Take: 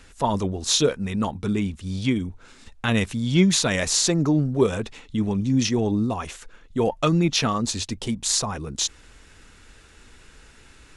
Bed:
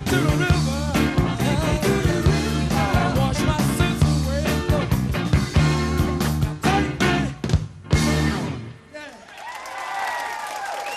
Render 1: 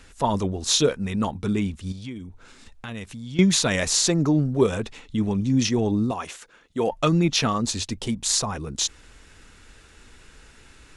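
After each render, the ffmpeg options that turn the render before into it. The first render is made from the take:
-filter_complex "[0:a]asettb=1/sr,asplit=3[a][b][c];[a]atrim=end=1.924[d];[b]atrim=start=1.92:end=3.39,asetpts=PTS-STARTPTS,afade=t=in:d=0.004:c=qsin,afade=t=out:st=1.466:d=0.004:c=qsin,acompressor=threshold=-42dB:ratio=2:attack=3.2:release=140:knee=1:detection=peak[e];[c]atrim=start=3.386[f];[d][e]acrossfade=d=0.004:c1=hsin:c2=qsin[g];[g][f]acrossfade=d=0.004:c1=qsin:c2=hsin,asettb=1/sr,asplit=3[h][i][j];[h]atrim=end=6.114[k];[i]atrim=start=6.11:end=6.91,asetpts=PTS-STARTPTS,afade=t=in:d=0.004:c=qsin,afade=t=out:st=0.796:d=0.004:c=qsin,highpass=f=270:p=1[l];[j]atrim=start=6.906[m];[k][l]acrossfade=d=0.004:c1=hsin:c2=qsin[n];[n][m]acrossfade=d=0.004:c1=qsin:c2=hsin"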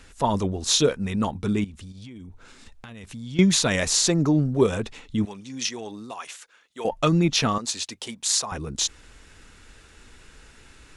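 -filter_complex "[0:a]asettb=1/sr,asplit=3[a][b][c];[a]atrim=end=1.644[d];[b]atrim=start=1.64:end=3.04,asetpts=PTS-STARTPTS,afade=t=in:d=0.004:c=qsin,afade=t=out:st=1.396:d=0.004:c=qsin,acompressor=threshold=-37dB:ratio=10:attack=3.2:release=140:knee=1:detection=peak[e];[c]atrim=start=3.036[f];[d][e]acrossfade=d=0.004:c1=hsin:c2=qsin[g];[g][f]acrossfade=d=0.004:c1=qsin:c2=hsin,asettb=1/sr,asplit=3[h][i][j];[h]atrim=end=5.254[k];[i]atrim=start=5.25:end=6.85,asetpts=PTS-STARTPTS,afade=t=in:d=0.004:c=qsin,afade=t=out:st=1.596:d=0.004:c=qsin,highpass=f=1.5k:p=1[l];[j]atrim=start=6.846[m];[k][l]acrossfade=d=0.004:c1=hsin:c2=qsin[n];[n][m]acrossfade=d=0.004:c1=qsin:c2=hsin,asettb=1/sr,asplit=3[o][p][q];[o]atrim=end=7.584[r];[p]atrim=start=7.58:end=8.52,asetpts=PTS-STARTPTS,afade=t=in:d=0.004:c=qsin,afade=t=out:st=0.936:d=0.004:c=qsin,highpass=f=880:p=1[s];[q]atrim=start=8.516[t];[r][s]acrossfade=d=0.004:c1=hsin:c2=qsin[u];[u][t]acrossfade=d=0.004:c1=qsin:c2=hsin"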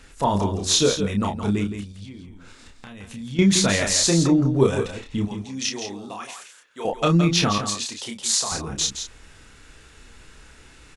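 -filter_complex "[0:a]asplit=2[a][b];[b]adelay=30,volume=-4.5dB[c];[a][c]amix=inputs=2:normalize=0,aecho=1:1:167:0.376"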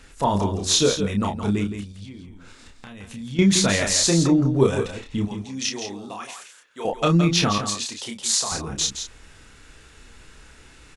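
-af anull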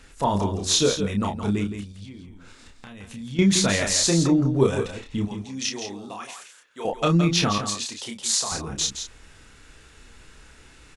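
-af "volume=-1.5dB"

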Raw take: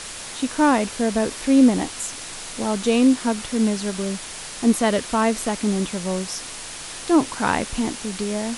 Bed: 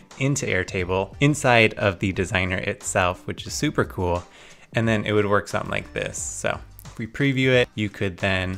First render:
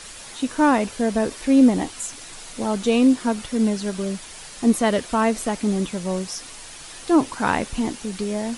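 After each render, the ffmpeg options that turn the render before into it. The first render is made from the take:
-af "afftdn=nr=7:nf=-35"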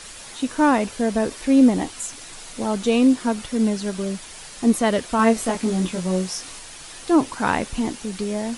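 -filter_complex "[0:a]asettb=1/sr,asplit=3[a][b][c];[a]atrim=end=5.174[d];[b]atrim=start=5.17:end=6.59,asetpts=PTS-STARTPTS,afade=t=in:d=0.004:c=qsin,afade=t=out:st=1.416:d=0.004:c=qsin,asplit=2[e][f];[f]adelay=22,volume=-3dB[g];[e][g]amix=inputs=2:normalize=0,atrim=end_sample=62622[h];[c]atrim=start=6.586[i];[d][h]acrossfade=d=0.004:c1=hsin:c2=qsin[j];[j][i]acrossfade=d=0.004:c1=qsin:c2=hsin"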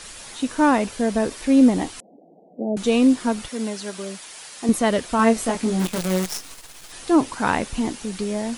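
-filter_complex "[0:a]asettb=1/sr,asplit=3[a][b][c];[a]atrim=end=2.004[d];[b]atrim=start=2:end=2.77,asetpts=PTS-STARTPTS,afade=t=in:d=0.004:c=qsin,afade=t=out:st=0.766:d=0.004:c=qsin,asuperpass=centerf=350:order=20:qfactor=0.58[e];[c]atrim=start=2.766[f];[d][e]acrossfade=d=0.004:c1=hsin:c2=qsin[g];[g][f]acrossfade=d=0.004:c1=qsin:c2=hsin,asettb=1/sr,asplit=3[h][i][j];[h]atrim=end=3.484[k];[i]atrim=start=3.48:end=4.69,asetpts=PTS-STARTPTS,afade=t=in:d=0.004:c=qsin,afade=t=out:st=1.206:d=0.004:c=qsin,highpass=f=510:p=1[l];[j]atrim=start=4.686[m];[k][l]acrossfade=d=0.004:c1=hsin:c2=qsin[n];[n][m]acrossfade=d=0.004:c1=qsin:c2=hsin,asplit=3[o][p][q];[o]afade=t=out:st=5.79:d=0.02[r];[p]acrusher=bits=5:dc=4:mix=0:aa=0.000001,afade=t=in:st=5.79:d=0.02,afade=t=out:st=6.91:d=0.02[s];[q]afade=t=in:st=6.91:d=0.02[t];[r][s][t]amix=inputs=3:normalize=0"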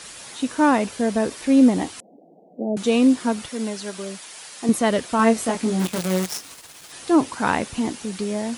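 -af "highpass=79"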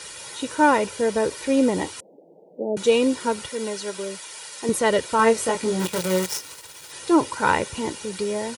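-af "highpass=63,aecho=1:1:2.1:0.6"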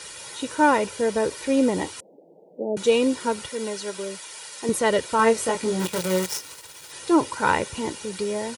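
-af "volume=-1dB"

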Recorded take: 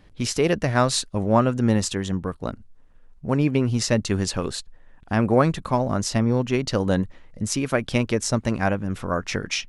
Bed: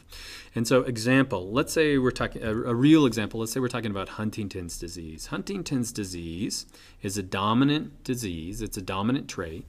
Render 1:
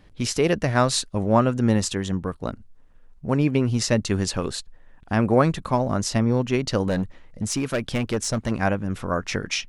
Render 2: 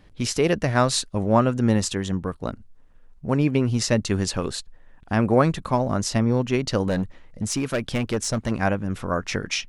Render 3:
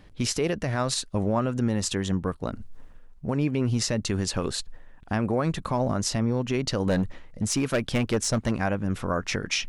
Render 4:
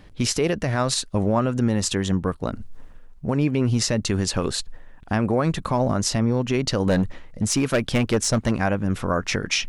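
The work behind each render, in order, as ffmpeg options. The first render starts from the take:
-filter_complex "[0:a]asettb=1/sr,asplit=3[a][b][c];[a]atrim=end=6.884[d];[b]atrim=start=6.88:end=8.51,asetpts=PTS-STARTPTS,afade=t=in:d=0.004:c=qsin,afade=t=out:st=1.626:d=0.004:c=qsin,asoftclip=type=hard:threshold=-18.5dB[e];[c]atrim=start=8.506[f];[d][e]acrossfade=d=0.004:c1=hsin:c2=qsin[g];[g][f]acrossfade=d=0.004:c1=qsin:c2=hsin"
-af anull
-af "areverse,acompressor=mode=upward:threshold=-29dB:ratio=2.5,areverse,alimiter=limit=-15dB:level=0:latency=1:release=110"
-af "volume=4dB"

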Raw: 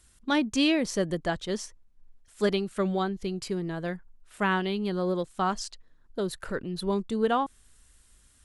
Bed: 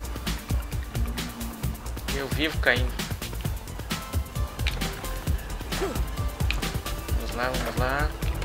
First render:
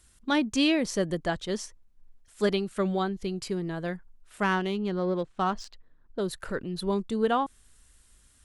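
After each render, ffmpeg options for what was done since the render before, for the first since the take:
-filter_complex "[0:a]asettb=1/sr,asplit=3[a][b][c];[a]atrim=end=4.434[d];[b]atrim=start=4.43:end=6.2,asetpts=PTS-STARTPTS,afade=t=in:d=0.004:c=qsin,afade=t=out:st=1.766:d=0.004:c=qsin,adynamicsmooth=sensitivity=3.5:basefreq=3k[e];[c]atrim=start=6.196[f];[d][e]acrossfade=d=0.004:c1=hsin:c2=qsin[g];[g][f]acrossfade=d=0.004:c1=qsin:c2=hsin"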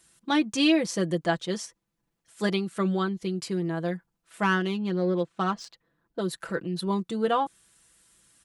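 -af "highpass=120,aecho=1:1:6:0.64"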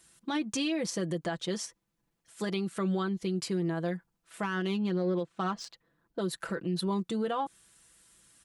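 -af "alimiter=limit=-23.5dB:level=0:latency=1:release=109"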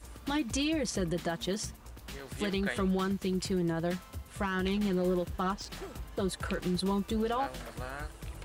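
-filter_complex "[1:a]volume=-14.5dB[a];[0:a][a]amix=inputs=2:normalize=0"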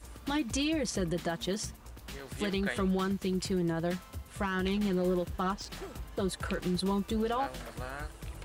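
-af anull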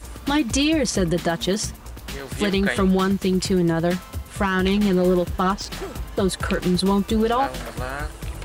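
-af "volume=11dB"

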